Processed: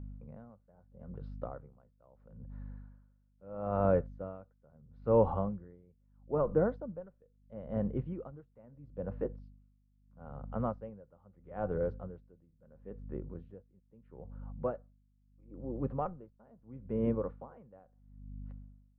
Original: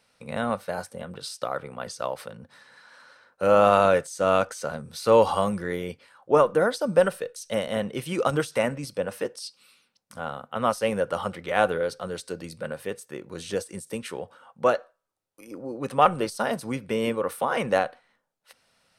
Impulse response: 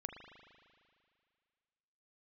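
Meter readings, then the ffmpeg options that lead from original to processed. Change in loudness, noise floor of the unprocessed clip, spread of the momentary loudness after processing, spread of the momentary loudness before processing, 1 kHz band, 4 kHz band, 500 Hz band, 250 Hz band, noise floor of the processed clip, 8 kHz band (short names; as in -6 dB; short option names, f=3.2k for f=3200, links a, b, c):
-10.0 dB, -72 dBFS, 23 LU, 17 LU, -17.0 dB, under -35 dB, -12.0 dB, -7.5 dB, -70 dBFS, under -40 dB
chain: -af "lowpass=1.1k,aemphasis=mode=reproduction:type=riaa,aeval=exprs='val(0)+0.0224*(sin(2*PI*50*n/s)+sin(2*PI*2*50*n/s)/2+sin(2*PI*3*50*n/s)/3+sin(2*PI*4*50*n/s)/4+sin(2*PI*5*50*n/s)/5)':c=same,aeval=exprs='val(0)*pow(10,-28*(0.5-0.5*cos(2*PI*0.76*n/s))/20)':c=same,volume=-9dB"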